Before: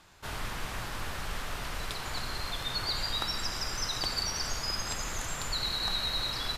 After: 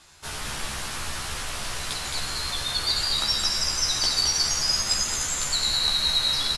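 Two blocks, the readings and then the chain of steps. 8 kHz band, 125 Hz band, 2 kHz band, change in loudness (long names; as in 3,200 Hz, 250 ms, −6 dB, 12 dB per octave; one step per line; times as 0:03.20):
+12.5 dB, +2.5 dB, +5.0 dB, +9.5 dB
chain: elliptic low-pass filter 11,000 Hz, stop band 80 dB
high-shelf EQ 4,000 Hz +12 dB
double-tracking delay 14 ms −2.5 dB
single-tap delay 217 ms −4 dB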